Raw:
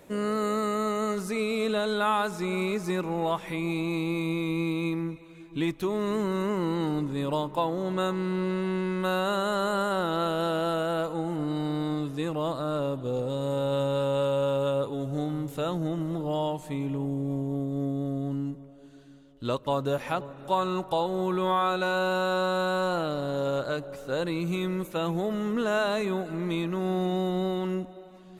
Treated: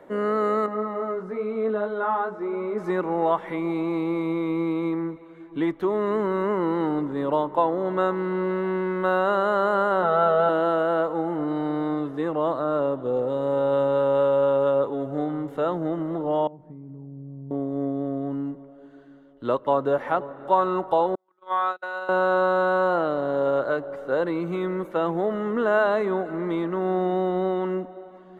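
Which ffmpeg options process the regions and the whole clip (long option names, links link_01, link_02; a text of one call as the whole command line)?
ffmpeg -i in.wav -filter_complex "[0:a]asettb=1/sr,asplit=3[link_01][link_02][link_03];[link_01]atrim=end=0.664[link_04];[link_02]atrim=start=0.66:end=2.78,asetpts=PTS-STARTPTS,afade=type=in:duration=0.004:curve=qsin,afade=type=out:start_time=2.116:duration=0.004:curve=qsin,lowpass=frequency=1200:poles=1,flanger=delay=18:depth=4.2:speed=1[link_05];[link_03]atrim=start=2.776[link_06];[link_04][link_05]acrossfade=duration=0.004:curve1=hsin:curve2=qsin[link_07];[link_07][link_06]acrossfade=duration=0.004:curve1=qsin:curve2=hsin,asettb=1/sr,asplit=3[link_08][link_09][link_10];[link_08]atrim=end=10.024[link_11];[link_09]atrim=start=10.02:end=10.49,asetpts=PTS-STARTPTS,afade=type=in:duration=0.004:curve=qsin,afade=type=out:start_time=0.466:duration=0.004:curve=qsin,lowpass=frequency=3000:poles=1,aecho=1:1:4.6:0.88,atrim=end_sample=20727[link_12];[link_10]atrim=start=10.486[link_13];[link_11][link_12]acrossfade=duration=0.004:curve1=hsin:curve2=qsin[link_14];[link_14][link_13]acrossfade=duration=0.004:curve1=qsin:curve2=hsin,asettb=1/sr,asplit=3[link_15][link_16][link_17];[link_15]atrim=end=16.474[link_18];[link_16]atrim=start=16.47:end=17.51,asetpts=PTS-STARTPTS,afade=type=in:duration=0.004:curve=qsin,afade=type=out:start_time=1.036:duration=0.004:curve=qsin,acompressor=threshold=-33dB:ratio=10:attack=3.2:release=140:knee=1:detection=peak,bandpass=frequency=140:width_type=q:width=1.1,asubboost=boost=11.5:cutoff=150[link_19];[link_17]atrim=start=17.506[link_20];[link_18][link_19]acrossfade=duration=0.004:curve1=hsin:curve2=qsin[link_21];[link_21][link_20]acrossfade=duration=0.004:curve1=qsin:curve2=hsin,asettb=1/sr,asplit=3[link_22][link_23][link_24];[link_22]atrim=end=21.154[link_25];[link_23]atrim=start=21.15:end=22.09,asetpts=PTS-STARTPTS,afade=type=in:duration=0.004:curve=qsin,afade=type=out:start_time=0.936:duration=0.004:curve=qsin,highpass=frequency=1300:poles=1,agate=range=-43dB:threshold=-32dB:ratio=16:release=100:detection=peak[link_26];[link_24]atrim=start=22.086[link_27];[link_25][link_26]acrossfade=duration=0.004:curve1=hsin:curve2=qsin[link_28];[link_28][link_27]acrossfade=duration=0.004:curve1=qsin:curve2=hsin,acrossover=split=260 2300:gain=0.224 1 0.0794[link_29][link_30][link_31];[link_29][link_30][link_31]amix=inputs=3:normalize=0,bandreject=frequency=2500:width=5.5,volume=6.5dB" out.wav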